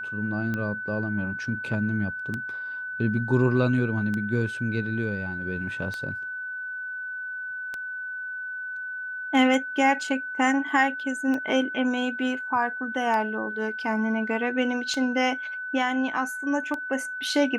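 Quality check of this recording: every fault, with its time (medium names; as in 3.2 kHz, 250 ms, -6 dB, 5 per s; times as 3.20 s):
tick 33 1/3 rpm -18 dBFS
whine 1.5 kHz -31 dBFS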